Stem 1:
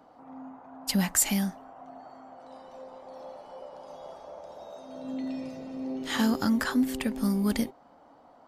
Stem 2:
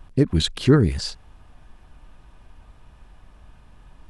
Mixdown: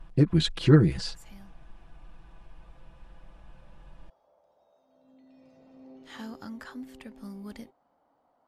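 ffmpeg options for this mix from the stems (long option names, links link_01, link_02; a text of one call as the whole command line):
ffmpeg -i stem1.wav -i stem2.wav -filter_complex "[0:a]equalizer=frequency=250:width=1.5:gain=-2.5,volume=-13.5dB,afade=type=in:start_time=5.28:duration=0.44:silence=0.375837[link_01];[1:a]aecho=1:1:6:0.79,volume=-4.5dB,asplit=2[link_02][link_03];[link_03]apad=whole_len=373578[link_04];[link_01][link_04]sidechaincompress=threshold=-42dB:ratio=8:attack=16:release=171[link_05];[link_05][link_02]amix=inputs=2:normalize=0,highshelf=frequency=6700:gain=-10" out.wav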